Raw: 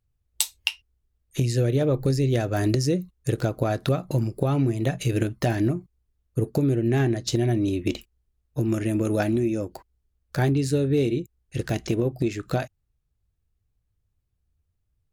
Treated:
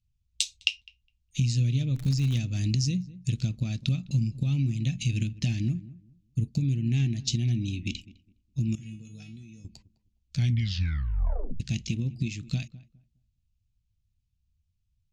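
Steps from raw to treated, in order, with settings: FFT filter 220 Hz 0 dB, 390 Hz -24 dB, 650 Hz -26 dB, 1.6 kHz -22 dB, 2.5 kHz +1 dB, 6.8 kHz +1 dB, 14 kHz -30 dB; 1.95–2.37 s: crackle 140 per s -30 dBFS; 8.75–9.65 s: feedback comb 150 Hz, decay 0.35 s, harmonics odd, mix 90%; filtered feedback delay 206 ms, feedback 23%, low-pass 1.2 kHz, level -17.5 dB; 10.36 s: tape stop 1.24 s; trim -1 dB

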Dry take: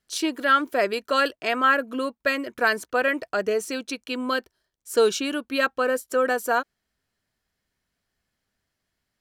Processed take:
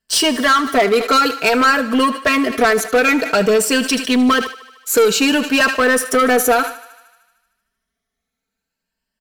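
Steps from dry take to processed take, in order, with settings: drifting ripple filter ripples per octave 1.3, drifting +0.55 Hz, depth 9 dB; comb 4.5 ms, depth 88%; compression 3:1, threshold -20 dBFS, peak gain reduction 9.5 dB; waveshaping leveller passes 3; thinning echo 76 ms, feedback 70%, high-pass 380 Hz, level -17 dB; on a send at -24 dB: reverberation RT60 0.50 s, pre-delay 4 ms; on the sum: decay stretcher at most 130 dB/s; trim +2 dB

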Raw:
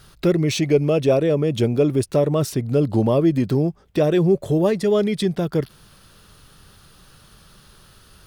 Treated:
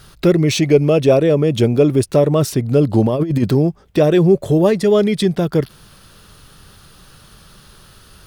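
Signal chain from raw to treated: 3.06–3.51 s: compressor with a negative ratio -20 dBFS, ratio -0.5; trim +5 dB

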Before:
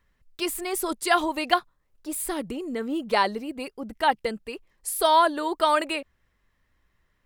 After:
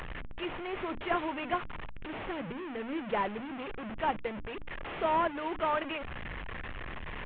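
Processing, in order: one-bit delta coder 16 kbps, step -25 dBFS; hum notches 60/120/180/240/300 Hz; trim -8 dB

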